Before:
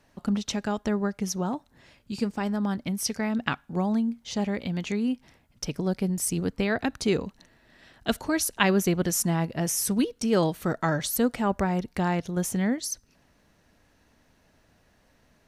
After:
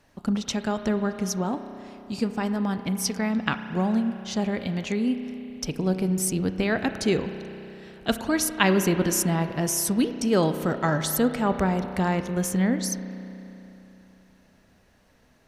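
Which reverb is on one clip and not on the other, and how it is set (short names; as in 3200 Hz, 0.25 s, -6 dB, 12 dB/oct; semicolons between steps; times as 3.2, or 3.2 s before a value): spring tank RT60 3.3 s, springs 32 ms, chirp 30 ms, DRR 8.5 dB; gain +1.5 dB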